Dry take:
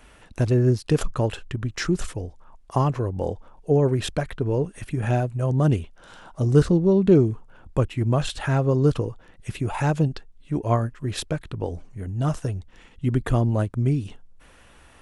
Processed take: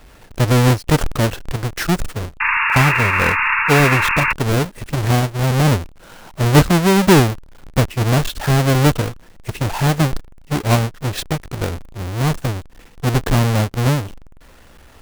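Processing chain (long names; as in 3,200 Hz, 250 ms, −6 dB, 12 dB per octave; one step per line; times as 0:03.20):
each half-wave held at its own peak
sound drawn into the spectrogram noise, 0:02.40–0:04.33, 860–2,800 Hz −19 dBFS
level +1.5 dB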